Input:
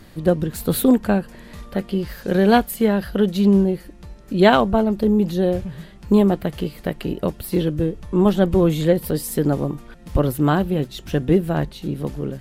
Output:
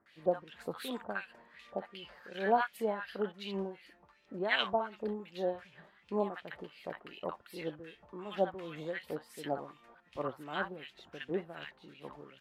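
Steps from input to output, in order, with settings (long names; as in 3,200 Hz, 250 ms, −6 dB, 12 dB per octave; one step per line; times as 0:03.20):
auto-filter band-pass sine 2.7 Hz 760–2,900 Hz
multiband delay without the direct sound lows, highs 60 ms, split 990 Hz
level −3.5 dB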